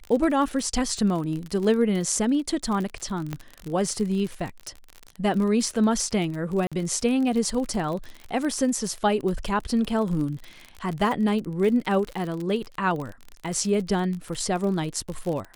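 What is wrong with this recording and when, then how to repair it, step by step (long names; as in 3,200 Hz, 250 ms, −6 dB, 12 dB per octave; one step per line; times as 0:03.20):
surface crackle 40 per second −29 dBFS
0:03.33: click −16 dBFS
0:06.67–0:06.72: drop-out 46 ms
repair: click removal
repair the gap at 0:06.67, 46 ms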